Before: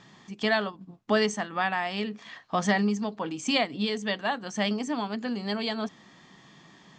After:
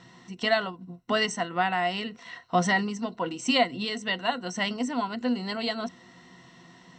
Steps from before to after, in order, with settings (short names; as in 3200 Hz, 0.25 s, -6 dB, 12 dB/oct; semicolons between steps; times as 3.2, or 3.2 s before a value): ripple EQ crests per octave 2, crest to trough 13 dB